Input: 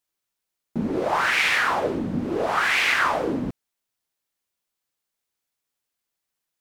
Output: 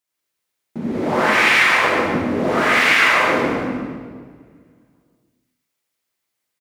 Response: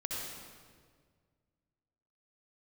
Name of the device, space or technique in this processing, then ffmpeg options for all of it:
PA in a hall: -filter_complex "[0:a]highpass=f=120:p=1,equalizer=f=2100:t=o:w=0.32:g=4,aecho=1:1:144:0.501[s0];[1:a]atrim=start_sample=2205[s1];[s0][s1]afir=irnorm=-1:irlink=0,volume=1.26"

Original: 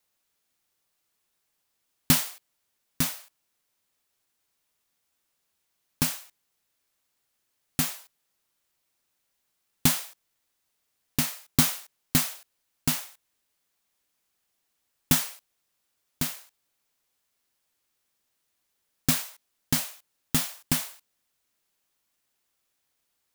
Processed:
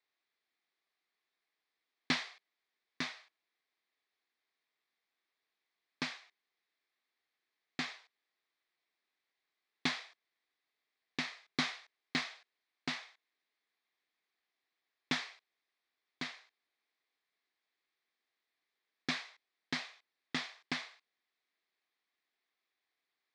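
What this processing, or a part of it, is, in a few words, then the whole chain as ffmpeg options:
phone earpiece: -af "highpass=430,equalizer=f=560:t=q:w=4:g=-10,equalizer=f=910:t=q:w=4:g=-7,equalizer=f=1400:t=q:w=4:g=-7,equalizer=f=2000:t=q:w=4:g=3,equalizer=f=2900:t=q:w=4:g=-9,lowpass=f=3900:w=0.5412,lowpass=f=3900:w=1.3066,volume=0.891"

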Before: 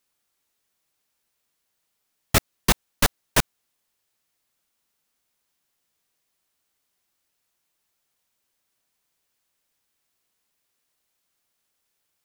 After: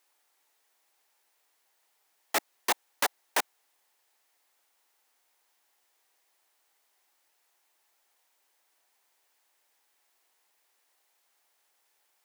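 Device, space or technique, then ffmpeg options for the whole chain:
laptop speaker: -af "highpass=f=320:w=0.5412,highpass=f=320:w=1.3066,equalizer=f=830:t=o:w=0.59:g=8,equalizer=f=1900:t=o:w=0.57:g=4,alimiter=limit=0.133:level=0:latency=1:release=19,volume=1.41"

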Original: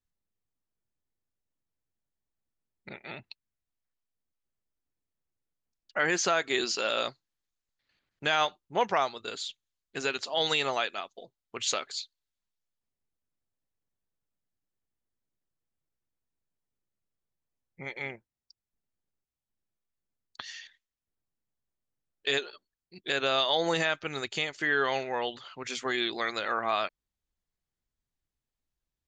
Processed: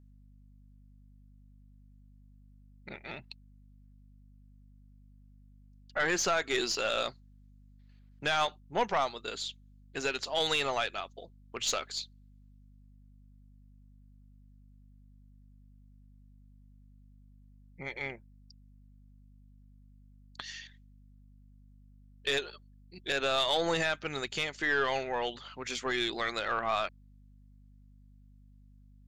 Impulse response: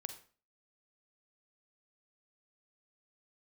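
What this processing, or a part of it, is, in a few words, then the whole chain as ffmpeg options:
valve amplifier with mains hum: -af "aeval=exprs='(tanh(8.91*val(0)+0.25)-tanh(0.25))/8.91':c=same,aeval=exprs='val(0)+0.00158*(sin(2*PI*50*n/s)+sin(2*PI*2*50*n/s)/2+sin(2*PI*3*50*n/s)/3+sin(2*PI*4*50*n/s)/4+sin(2*PI*5*50*n/s)/5)':c=same"

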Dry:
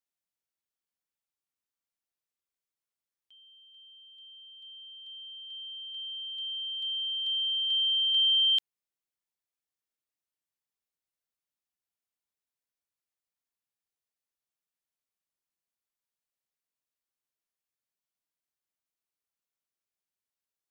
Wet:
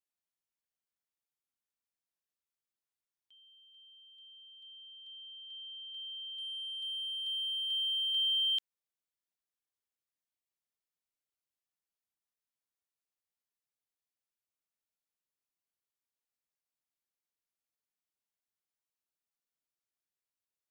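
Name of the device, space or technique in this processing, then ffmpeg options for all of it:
parallel distortion: -filter_complex "[0:a]asplit=2[s0][s1];[s1]asoftclip=type=hard:threshold=0.015,volume=0.316[s2];[s0][s2]amix=inputs=2:normalize=0,volume=0.447"

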